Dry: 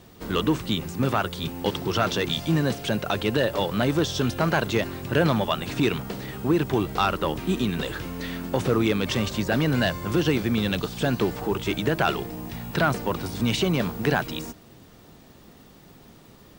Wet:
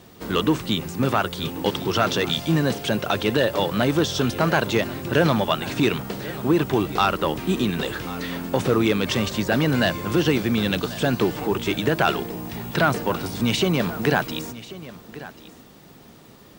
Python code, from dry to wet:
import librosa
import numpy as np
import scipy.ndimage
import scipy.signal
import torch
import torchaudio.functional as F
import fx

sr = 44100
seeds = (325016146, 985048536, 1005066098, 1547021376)

p1 = fx.low_shelf(x, sr, hz=70.0, db=-9.0)
p2 = p1 + fx.echo_single(p1, sr, ms=1089, db=-17.0, dry=0)
y = p2 * librosa.db_to_amplitude(3.0)